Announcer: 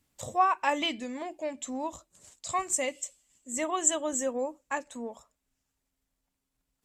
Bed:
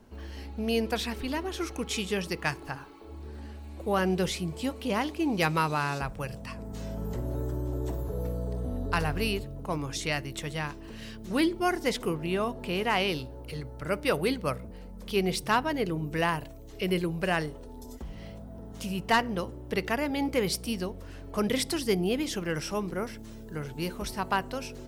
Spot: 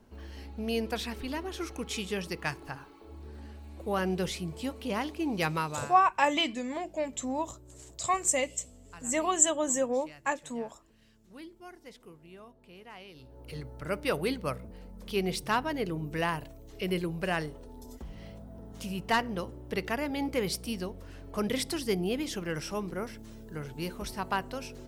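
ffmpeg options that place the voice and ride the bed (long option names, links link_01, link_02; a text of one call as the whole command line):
ffmpeg -i stem1.wav -i stem2.wav -filter_complex "[0:a]adelay=5550,volume=2dB[link_01];[1:a]volume=15dB,afade=type=out:start_time=5.52:duration=0.49:silence=0.125893,afade=type=in:start_time=13.14:duration=0.43:silence=0.11885[link_02];[link_01][link_02]amix=inputs=2:normalize=0" out.wav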